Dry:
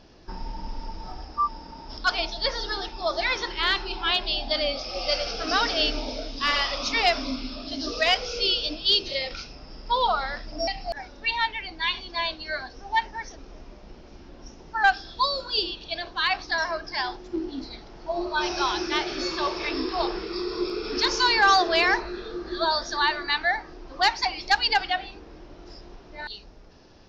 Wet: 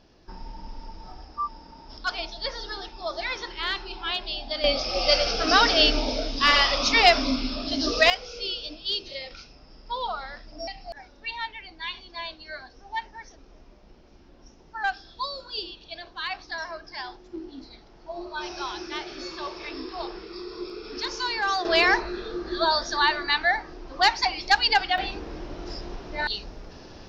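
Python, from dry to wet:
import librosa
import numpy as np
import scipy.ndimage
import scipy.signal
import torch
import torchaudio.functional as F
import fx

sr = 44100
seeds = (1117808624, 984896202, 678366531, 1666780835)

y = fx.gain(x, sr, db=fx.steps((0.0, -5.0), (4.64, 5.0), (8.1, -7.5), (21.65, 1.5), (24.98, 8.5)))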